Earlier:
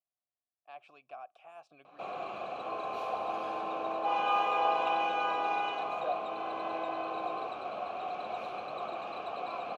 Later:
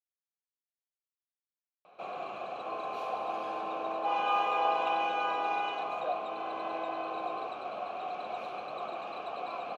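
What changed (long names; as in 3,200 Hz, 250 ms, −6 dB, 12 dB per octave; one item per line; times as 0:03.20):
speech: muted
master: add high-pass filter 110 Hz 6 dB per octave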